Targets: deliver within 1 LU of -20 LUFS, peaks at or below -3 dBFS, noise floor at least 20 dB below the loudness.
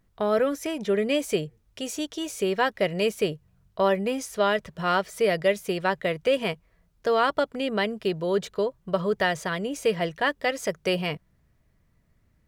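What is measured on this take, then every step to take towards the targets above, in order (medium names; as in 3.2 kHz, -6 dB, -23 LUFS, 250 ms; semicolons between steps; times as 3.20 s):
loudness -26.5 LUFS; peak level -10.0 dBFS; loudness target -20.0 LUFS
-> trim +6.5 dB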